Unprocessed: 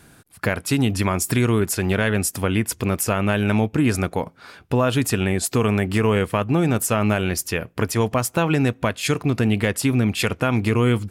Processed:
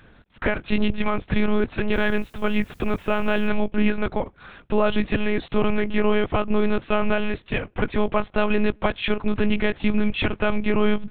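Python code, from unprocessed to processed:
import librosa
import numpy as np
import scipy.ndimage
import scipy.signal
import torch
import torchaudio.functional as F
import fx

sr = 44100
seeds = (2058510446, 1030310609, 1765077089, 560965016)

y = fx.lpc_monotone(x, sr, seeds[0], pitch_hz=210.0, order=8)
y = fx.quant_dither(y, sr, seeds[1], bits=10, dither='triangular', at=(1.92, 3.47), fade=0.02)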